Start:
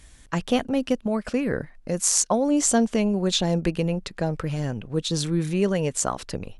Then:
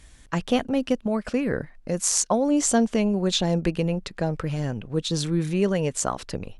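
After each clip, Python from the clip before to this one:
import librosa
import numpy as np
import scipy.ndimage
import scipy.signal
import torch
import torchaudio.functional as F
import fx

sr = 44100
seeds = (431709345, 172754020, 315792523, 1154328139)

y = fx.high_shelf(x, sr, hz=8700.0, db=-4.5)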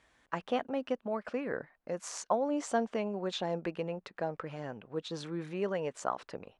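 y = fx.bandpass_q(x, sr, hz=960.0, q=0.76)
y = y * librosa.db_to_amplitude(-4.5)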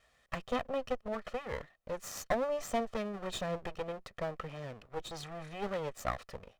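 y = fx.lower_of_two(x, sr, delay_ms=1.6)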